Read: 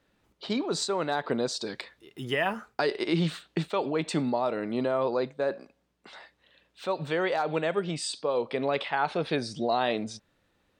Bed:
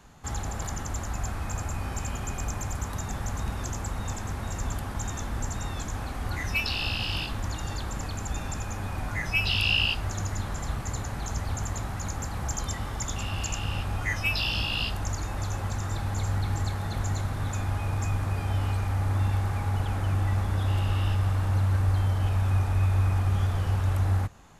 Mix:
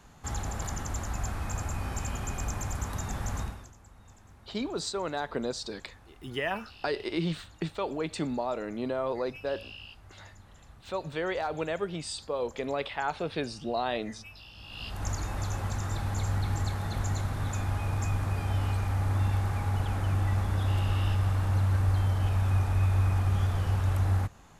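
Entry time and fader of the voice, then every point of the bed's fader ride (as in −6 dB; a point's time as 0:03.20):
4.05 s, −4.0 dB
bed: 0:03.41 −1.5 dB
0:03.74 −22 dB
0:14.55 −22 dB
0:15.06 −1.5 dB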